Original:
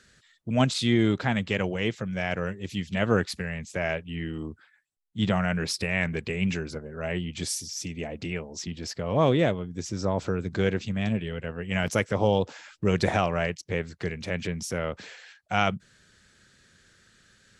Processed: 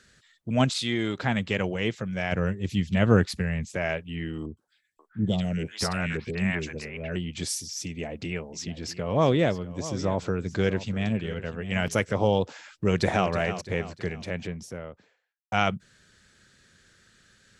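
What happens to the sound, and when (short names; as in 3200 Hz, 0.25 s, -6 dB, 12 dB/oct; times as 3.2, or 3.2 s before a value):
0.69–1.18 low shelf 410 Hz -9 dB
2.32–3.76 low shelf 230 Hz +9 dB
4.46–7.16 three bands offset in time lows, highs, mids 0.11/0.53 s, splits 670/2400 Hz
7.88–12.15 echo 0.648 s -15 dB
12.74–13.29 echo throw 0.32 s, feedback 45%, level -11 dB
13.92–15.52 studio fade out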